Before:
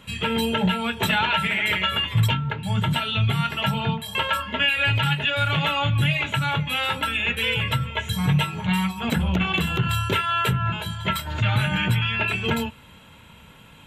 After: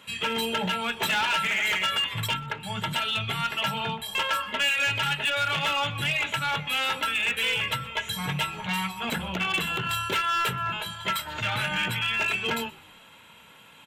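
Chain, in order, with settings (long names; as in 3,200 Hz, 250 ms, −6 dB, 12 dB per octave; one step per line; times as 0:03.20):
high-pass filter 550 Hz 6 dB per octave
in parallel at −3 dB: wave folding −21.5 dBFS
on the sum: echo with shifted repeats 124 ms, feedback 41%, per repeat −70 Hz, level −23 dB
level −5 dB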